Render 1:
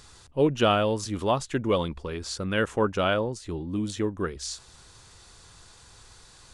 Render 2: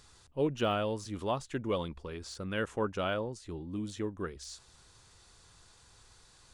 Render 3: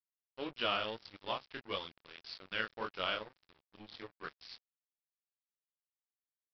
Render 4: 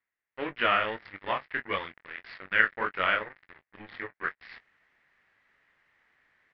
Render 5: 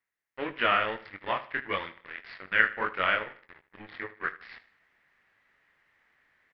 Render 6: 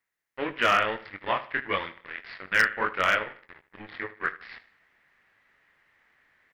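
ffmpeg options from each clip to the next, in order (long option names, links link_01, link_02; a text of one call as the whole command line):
ffmpeg -i in.wav -af "deesser=0.75,volume=-8dB" out.wav
ffmpeg -i in.wav -af "tiltshelf=frequency=970:gain=-9.5,flanger=delay=20:depth=7.9:speed=1.7,aresample=11025,aeval=exprs='sgn(val(0))*max(abs(val(0))-0.00531,0)':channel_layout=same,aresample=44100,volume=1dB" out.wav
ffmpeg -i in.wav -filter_complex "[0:a]areverse,acompressor=mode=upward:threshold=-53dB:ratio=2.5,areverse,lowpass=frequency=1900:width_type=q:width=5,asplit=2[link_01][link_02];[link_02]adelay=21,volume=-13dB[link_03];[link_01][link_03]amix=inputs=2:normalize=0,volume=6dB" out.wav
ffmpeg -i in.wav -af "aecho=1:1:77|154|231:0.158|0.0571|0.0205" out.wav
ffmpeg -i in.wav -af "volume=15.5dB,asoftclip=hard,volume=-15.5dB,volume=3dB" out.wav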